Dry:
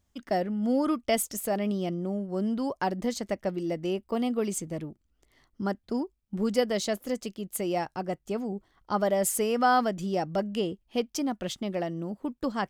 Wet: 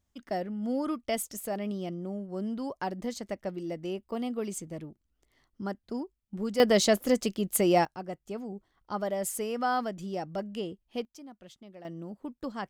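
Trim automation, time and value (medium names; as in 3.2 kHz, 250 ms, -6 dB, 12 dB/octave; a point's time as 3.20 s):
-5 dB
from 6.60 s +6 dB
from 7.85 s -6 dB
from 11.05 s -18 dB
from 11.85 s -6.5 dB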